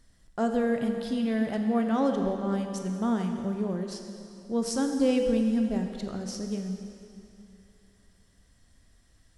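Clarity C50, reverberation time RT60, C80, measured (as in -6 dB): 5.5 dB, 2.7 s, 6.0 dB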